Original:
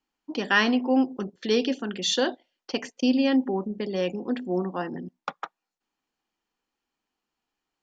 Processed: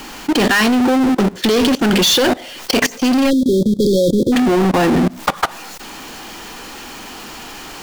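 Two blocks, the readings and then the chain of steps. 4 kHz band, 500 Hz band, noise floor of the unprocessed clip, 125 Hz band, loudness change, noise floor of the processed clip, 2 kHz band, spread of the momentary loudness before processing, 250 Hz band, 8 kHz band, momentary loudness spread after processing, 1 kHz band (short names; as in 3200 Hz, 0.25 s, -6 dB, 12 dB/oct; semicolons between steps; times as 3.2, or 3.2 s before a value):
+12.5 dB, +11.5 dB, under -85 dBFS, +17.0 dB, +11.0 dB, -33 dBFS, +9.5 dB, 15 LU, +11.5 dB, n/a, 19 LU, +12.0 dB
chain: power-law curve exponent 0.35; spectral delete 3.3–4.33, 570–3200 Hz; level quantiser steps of 20 dB; gain +7 dB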